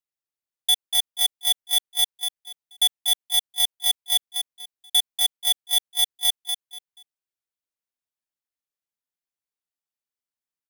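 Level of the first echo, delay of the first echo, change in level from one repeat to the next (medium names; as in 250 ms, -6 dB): -7.0 dB, 241 ms, -12.0 dB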